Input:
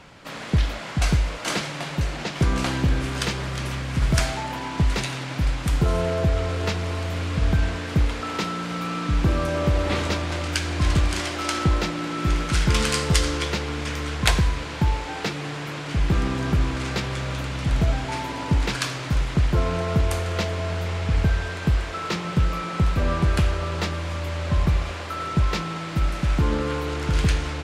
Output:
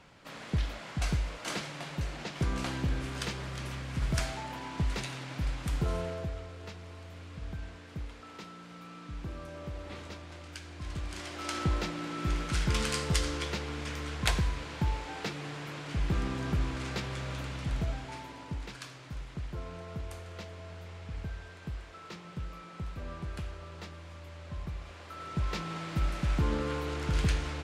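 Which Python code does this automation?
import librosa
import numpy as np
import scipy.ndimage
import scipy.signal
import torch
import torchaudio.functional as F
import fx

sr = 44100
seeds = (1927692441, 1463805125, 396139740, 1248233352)

y = fx.gain(x, sr, db=fx.line((5.93, -10.0), (6.51, -19.5), (10.85, -19.5), (11.58, -9.0), (17.49, -9.0), (18.71, -18.5), (24.75, -18.5), (25.75, -7.5)))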